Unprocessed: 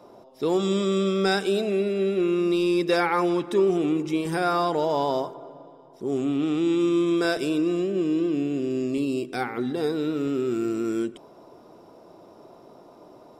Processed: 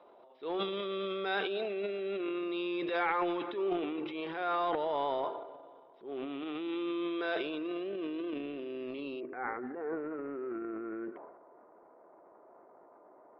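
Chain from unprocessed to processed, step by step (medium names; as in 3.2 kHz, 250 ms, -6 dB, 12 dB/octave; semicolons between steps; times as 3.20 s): high-pass 460 Hz 12 dB/octave; transient shaper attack -7 dB, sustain +10 dB; steep low-pass 3.8 kHz 48 dB/octave, from 9.19 s 2 kHz; trim -7 dB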